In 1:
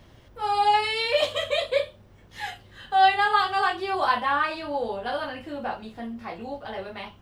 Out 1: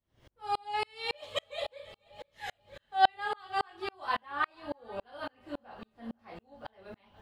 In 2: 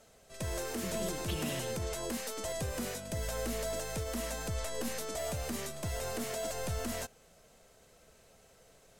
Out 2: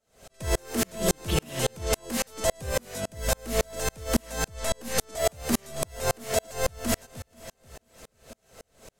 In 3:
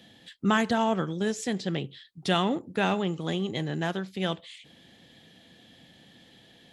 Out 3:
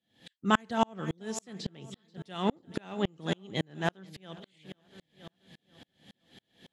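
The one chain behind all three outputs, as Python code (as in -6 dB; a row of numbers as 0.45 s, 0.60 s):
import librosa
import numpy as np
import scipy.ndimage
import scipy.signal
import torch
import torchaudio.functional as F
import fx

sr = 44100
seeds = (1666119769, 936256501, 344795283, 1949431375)

y = fx.echo_feedback(x, sr, ms=483, feedback_pct=55, wet_db=-18)
y = fx.tremolo_decay(y, sr, direction='swelling', hz=3.6, depth_db=39)
y = librosa.util.normalize(y) * 10.0 ** (-9 / 20.0)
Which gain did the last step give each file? -1.5 dB, +17.5 dB, +4.5 dB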